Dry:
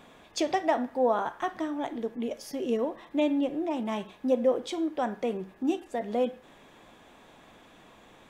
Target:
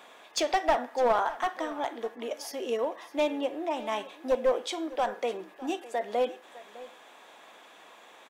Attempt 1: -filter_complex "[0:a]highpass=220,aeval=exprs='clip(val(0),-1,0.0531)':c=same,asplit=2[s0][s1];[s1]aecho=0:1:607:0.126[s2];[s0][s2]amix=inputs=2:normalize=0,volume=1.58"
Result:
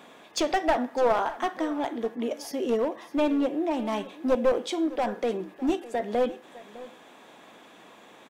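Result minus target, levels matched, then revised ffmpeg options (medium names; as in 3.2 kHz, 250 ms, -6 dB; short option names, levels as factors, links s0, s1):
250 Hz band +6.0 dB
-filter_complex "[0:a]highpass=540,aeval=exprs='clip(val(0),-1,0.0531)':c=same,asplit=2[s0][s1];[s1]aecho=0:1:607:0.126[s2];[s0][s2]amix=inputs=2:normalize=0,volume=1.58"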